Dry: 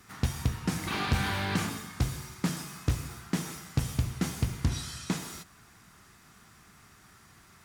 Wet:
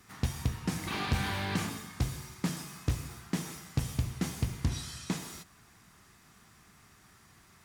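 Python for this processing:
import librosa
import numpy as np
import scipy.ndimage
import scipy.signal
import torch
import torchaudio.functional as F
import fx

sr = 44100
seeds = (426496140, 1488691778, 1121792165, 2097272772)

y = fx.peak_eq(x, sr, hz=1400.0, db=-3.5, octaves=0.25)
y = F.gain(torch.from_numpy(y), -2.5).numpy()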